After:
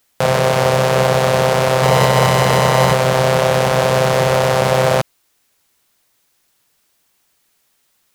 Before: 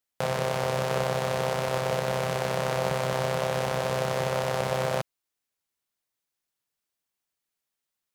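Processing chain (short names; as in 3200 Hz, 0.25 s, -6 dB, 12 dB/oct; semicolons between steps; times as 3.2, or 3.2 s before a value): 1.76–2.93 flutter echo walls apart 11.7 m, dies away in 0.71 s; maximiser +23.5 dB; gain -1 dB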